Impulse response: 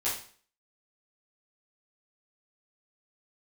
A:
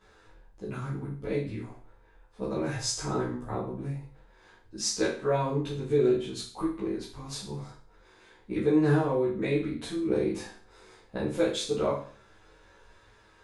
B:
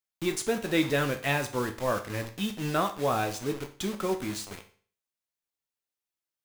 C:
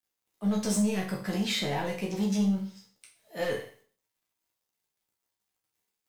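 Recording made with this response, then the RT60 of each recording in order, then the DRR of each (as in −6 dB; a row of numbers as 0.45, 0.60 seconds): A; 0.45, 0.45, 0.45 seconds; −11.0, 5.5, −2.5 decibels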